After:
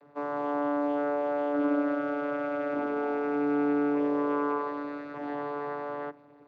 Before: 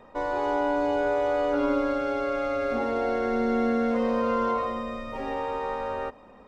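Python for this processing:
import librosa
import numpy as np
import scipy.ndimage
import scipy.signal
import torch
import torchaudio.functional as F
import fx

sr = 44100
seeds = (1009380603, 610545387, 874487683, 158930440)

y = fx.vocoder(x, sr, bands=16, carrier='saw', carrier_hz=145.0)
y = fx.dynamic_eq(y, sr, hz=1500.0, q=1.2, threshold_db=-47.0, ratio=4.0, max_db=5)
y = y * 10.0 ** (-2.5 / 20.0)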